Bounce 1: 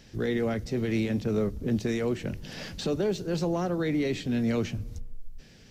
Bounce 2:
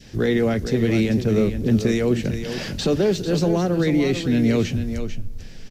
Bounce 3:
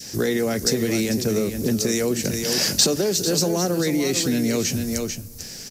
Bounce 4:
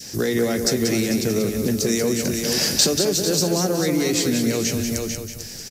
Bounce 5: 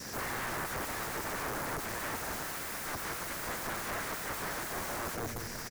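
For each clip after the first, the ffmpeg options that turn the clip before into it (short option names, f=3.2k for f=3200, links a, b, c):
-filter_complex "[0:a]adynamicequalizer=threshold=0.00501:dfrequency=1000:dqfactor=1:tfrequency=1000:tqfactor=1:attack=5:release=100:ratio=0.375:range=3:mode=cutabove:tftype=bell,asplit=2[a][b];[b]aecho=0:1:445:0.335[c];[a][c]amix=inputs=2:normalize=0,volume=8.5dB"
-af "highpass=f=220:p=1,acompressor=threshold=-24dB:ratio=4,aexciter=amount=5.9:drive=4.7:freq=4.7k,volume=4.5dB"
-af "aecho=1:1:186|372|558|744:0.473|0.151|0.0485|0.0155"
-af "acompressor=threshold=-29dB:ratio=2,aeval=exprs='(mod(28.2*val(0)+1,2)-1)/28.2':c=same,highshelf=f=2.3k:t=q:w=1.5:g=-7.5"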